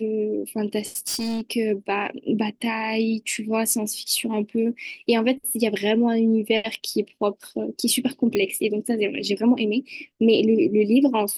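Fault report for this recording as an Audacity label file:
0.960000	1.510000	clipped -23.5 dBFS
8.350000	8.350000	pop -11 dBFS

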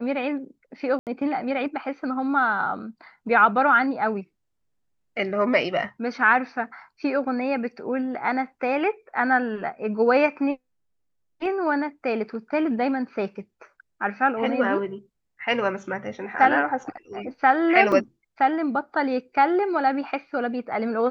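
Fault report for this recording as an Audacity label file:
0.990000	1.070000	gap 78 ms
17.920000	17.920000	gap 3.5 ms

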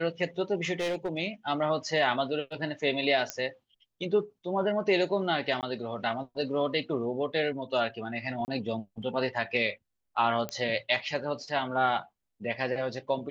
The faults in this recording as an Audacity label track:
0.790000	1.180000	clipped -26 dBFS
3.300000	3.300000	pop -14 dBFS
5.610000	5.630000	gap 18 ms
8.450000	8.480000	gap 29 ms
10.490000	10.490000	pop -18 dBFS

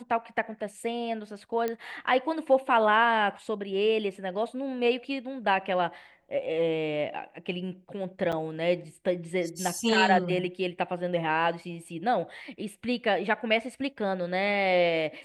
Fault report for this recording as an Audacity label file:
1.680000	1.680000	pop -17 dBFS
8.320000	8.330000	gap 6 ms

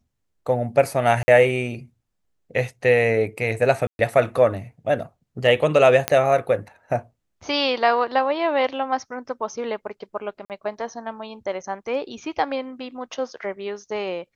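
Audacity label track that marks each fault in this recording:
1.230000	1.280000	gap 50 ms
3.870000	3.990000	gap 0.121 s
6.080000	6.080000	pop -3 dBFS
10.450000	10.500000	gap 48 ms

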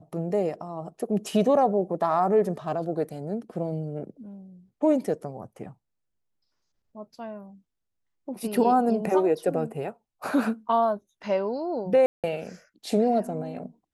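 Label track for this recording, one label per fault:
12.060000	12.240000	gap 0.177 s

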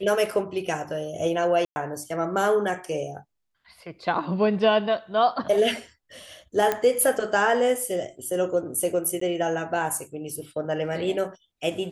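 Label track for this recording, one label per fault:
1.650000	1.760000	gap 0.11 s
6.720000	6.720000	pop -10 dBFS
9.200000	9.210000	gap 14 ms

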